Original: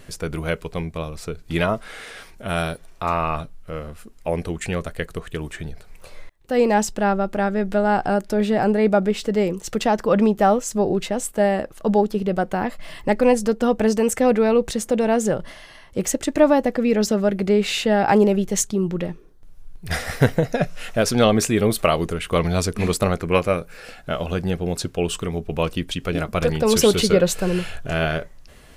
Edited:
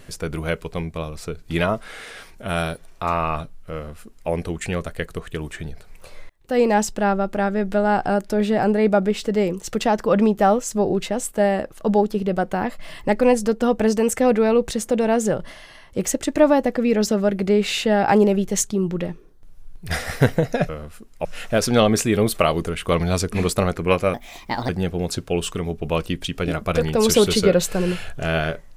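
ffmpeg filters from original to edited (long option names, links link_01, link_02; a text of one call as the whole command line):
ffmpeg -i in.wav -filter_complex "[0:a]asplit=5[link_01][link_02][link_03][link_04][link_05];[link_01]atrim=end=20.692[link_06];[link_02]atrim=start=3.738:end=4.302[link_07];[link_03]atrim=start=20.688:end=23.584[link_08];[link_04]atrim=start=23.58:end=24.36,asetpts=PTS-STARTPTS,asetrate=62622,aresample=44100[link_09];[link_05]atrim=start=24.356[link_10];[link_06][link_07]acrossfade=duration=0.004:curve1=hsin:curve2=hsin[link_11];[link_11][link_08]acrossfade=duration=0.004:curve1=hsin:curve2=hsin[link_12];[link_12][link_09]acrossfade=duration=0.004:curve1=hsin:curve2=hsin[link_13];[link_13][link_10]acrossfade=duration=0.004:curve1=hsin:curve2=hsin" out.wav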